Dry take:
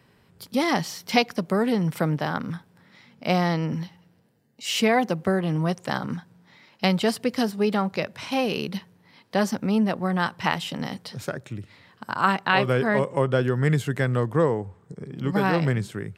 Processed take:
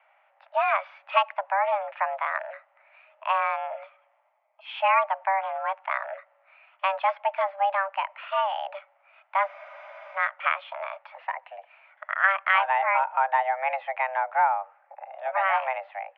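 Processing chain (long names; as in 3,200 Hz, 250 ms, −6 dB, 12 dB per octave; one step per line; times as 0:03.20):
single-sideband voice off tune +390 Hz 250–2,300 Hz
frozen spectrum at 0:09.49, 0.67 s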